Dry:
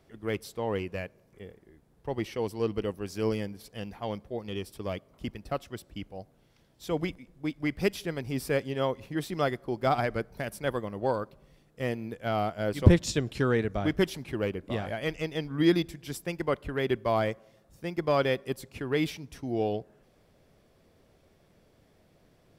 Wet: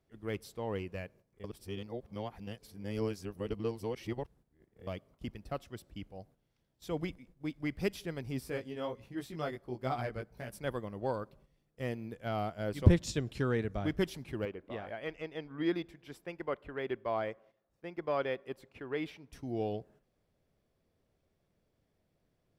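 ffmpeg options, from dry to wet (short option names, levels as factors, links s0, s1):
-filter_complex "[0:a]asettb=1/sr,asplit=3[s0][s1][s2];[s0]atrim=end=8.404[s3];[s1]atrim=start=8.4:end=10.53,asetpts=PTS-STARTPTS,afade=t=in:d=0.004:c=qsin,afade=t=out:st=2.126:d=0.004:c=qsin,flanger=delay=15.5:depth=3.7:speed=1.4[s4];[s2]atrim=start=10.526[s5];[s3][s4]acrossfade=d=0.004:c1=hsin:c2=qsin[s6];[s6][s5]acrossfade=d=0.004:c1=qsin:c2=hsin,asettb=1/sr,asplit=3[s7][s8][s9];[s7]atrim=end=14.454[s10];[s8]atrim=start=14.45:end=19.33,asetpts=PTS-STARTPTS,afade=t=in:d=0.004:c=qsin,afade=t=out:st=4.876:d=0.004:c=qsin,bass=f=250:g=-11,treble=f=4000:g=-14[s11];[s9]atrim=start=19.326[s12];[s10][s11]acrossfade=d=0.004:c1=hsin:c2=qsin[s13];[s13][s12]acrossfade=d=0.004:c1=qsin:c2=hsin,asplit=3[s14][s15][s16];[s14]atrim=end=1.442[s17];[s15]atrim=start=1.438:end=4.872,asetpts=PTS-STARTPTS,areverse[s18];[s16]atrim=start=4.868[s19];[s17][s18]acrossfade=d=0.004:c1=hsin:c2=hsin[s20];[s20][s19]acrossfade=d=0.004:c1=hsin:c2=hsin,agate=range=0.355:threshold=0.002:ratio=16:detection=peak,lowshelf=f=180:g=4,volume=0.447"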